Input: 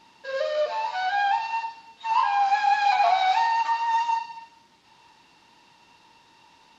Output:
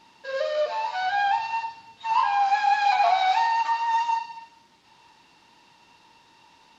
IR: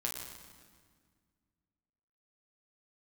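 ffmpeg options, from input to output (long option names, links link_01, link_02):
-filter_complex "[0:a]asettb=1/sr,asplit=3[link_01][link_02][link_03];[link_01]atrim=end=1.004[link_04];[link_02]atrim=start=1:end=2.36,asetpts=PTS-STARTPTS,afade=type=in:duration=0.004:curve=qsin,afade=type=out:start_time=1.356:duration=0.004:curve=qsin,equalizer=frequency=110:width_type=o:width=0.98:gain=10.5[link_05];[link_03]atrim=start=2.356[link_06];[link_04][link_05]acrossfade=duration=0.004:curve1=hsin:curve2=qsin[link_07];[link_07][link_06]acrossfade=duration=0.004:curve1=qsin:curve2=hsin"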